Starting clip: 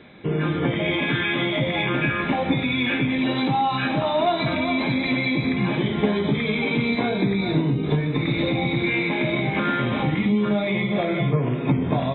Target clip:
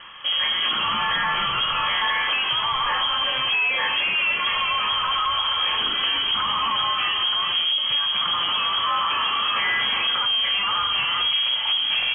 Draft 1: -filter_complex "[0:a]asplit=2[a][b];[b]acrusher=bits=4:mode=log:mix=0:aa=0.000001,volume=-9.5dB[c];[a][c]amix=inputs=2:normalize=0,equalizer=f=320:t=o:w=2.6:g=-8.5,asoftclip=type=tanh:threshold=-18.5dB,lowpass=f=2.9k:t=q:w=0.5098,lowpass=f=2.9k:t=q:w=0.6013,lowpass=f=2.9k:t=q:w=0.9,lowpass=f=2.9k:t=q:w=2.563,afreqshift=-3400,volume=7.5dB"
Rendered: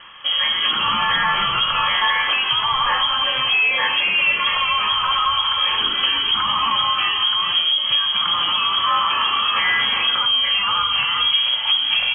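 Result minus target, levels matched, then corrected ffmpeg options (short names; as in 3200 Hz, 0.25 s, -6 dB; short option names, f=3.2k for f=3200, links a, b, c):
soft clip: distortion -8 dB
-filter_complex "[0:a]asplit=2[a][b];[b]acrusher=bits=4:mode=log:mix=0:aa=0.000001,volume=-9.5dB[c];[a][c]amix=inputs=2:normalize=0,equalizer=f=320:t=o:w=2.6:g=-8.5,asoftclip=type=tanh:threshold=-26.5dB,lowpass=f=2.9k:t=q:w=0.5098,lowpass=f=2.9k:t=q:w=0.6013,lowpass=f=2.9k:t=q:w=0.9,lowpass=f=2.9k:t=q:w=2.563,afreqshift=-3400,volume=7.5dB"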